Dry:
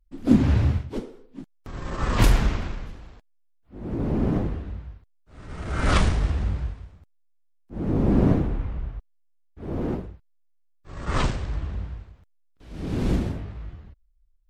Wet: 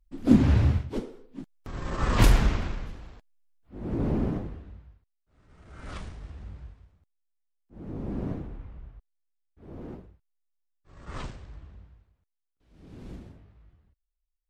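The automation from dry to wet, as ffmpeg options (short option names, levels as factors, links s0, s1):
-af "volume=1.78,afade=t=out:st=4.07:d=0.34:silence=0.375837,afade=t=out:st=4.41:d=1.03:silence=0.316228,afade=t=in:st=6.19:d=0.64:silence=0.501187,afade=t=out:st=11.13:d=0.81:silence=0.501187"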